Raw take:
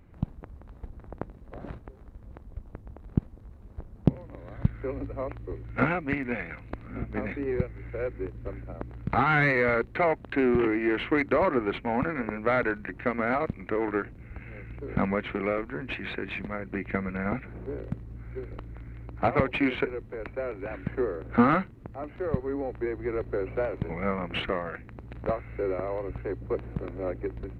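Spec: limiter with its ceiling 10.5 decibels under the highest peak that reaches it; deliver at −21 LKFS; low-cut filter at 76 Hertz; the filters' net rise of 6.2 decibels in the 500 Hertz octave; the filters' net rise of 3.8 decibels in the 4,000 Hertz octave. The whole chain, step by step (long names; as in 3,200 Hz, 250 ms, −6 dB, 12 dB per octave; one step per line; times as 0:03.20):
high-pass filter 76 Hz
parametric band 500 Hz +7.5 dB
parametric band 4,000 Hz +5.5 dB
level +6.5 dB
brickwall limiter −7.5 dBFS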